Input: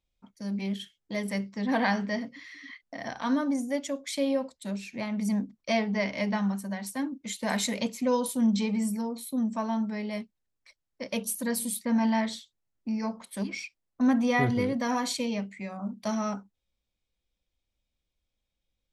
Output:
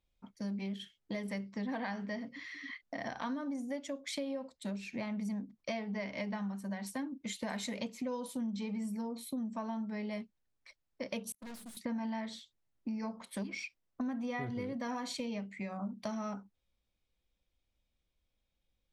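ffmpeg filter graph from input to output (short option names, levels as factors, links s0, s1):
-filter_complex "[0:a]asettb=1/sr,asplit=3[s0][s1][s2];[s0]atrim=end=11.324[s3];[s1]atrim=start=11.32:end=11.77,asetpts=PTS-STARTPTS,afade=t=in:d=0.004:c=qsin,afade=t=out:st=0.446:d=0.004:c=qsin,agate=range=0.0126:threshold=0.0251:ratio=16:release=100:detection=peak,bandreject=f=50:t=h:w=6,bandreject=f=100:t=h:w=6,bandreject=f=150:t=h:w=6,bandreject=f=200:t=h:w=6,aeval=exprs='(tanh(200*val(0)+0.3)-tanh(0.3))/200':c=same[s4];[s2]atrim=start=11.766[s5];[s3][s4]acrossfade=d=0.004:c1=hsin:c2=qsin[s6];[s6][s5]acrossfade=d=0.004:c1=qsin:c2=hsin,highshelf=f=6800:g=-10,acompressor=threshold=0.0141:ratio=6,volume=1.12"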